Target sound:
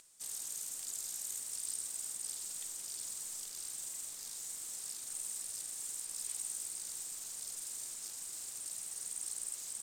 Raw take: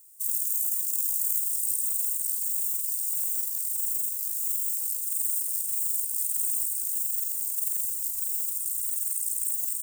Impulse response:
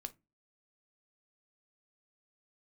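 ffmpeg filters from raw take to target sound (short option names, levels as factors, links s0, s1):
-filter_complex "[0:a]acompressor=mode=upward:threshold=0.00631:ratio=2.5,lowpass=3500,asplit=2[s0][s1];[1:a]atrim=start_sample=2205,lowpass=9000[s2];[s1][s2]afir=irnorm=-1:irlink=0,volume=0.447[s3];[s0][s3]amix=inputs=2:normalize=0,volume=2.51"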